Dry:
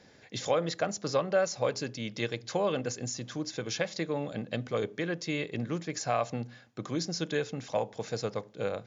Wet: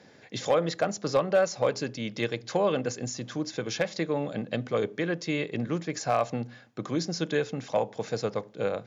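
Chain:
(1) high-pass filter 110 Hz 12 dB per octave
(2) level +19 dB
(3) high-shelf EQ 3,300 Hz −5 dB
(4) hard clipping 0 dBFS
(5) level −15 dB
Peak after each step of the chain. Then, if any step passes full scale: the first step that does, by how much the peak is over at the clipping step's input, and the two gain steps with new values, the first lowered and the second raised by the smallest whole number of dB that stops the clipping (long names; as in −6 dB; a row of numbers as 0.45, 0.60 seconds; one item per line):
−14.5, +4.5, +4.0, 0.0, −15.0 dBFS
step 2, 4.0 dB
step 2 +15 dB, step 5 −11 dB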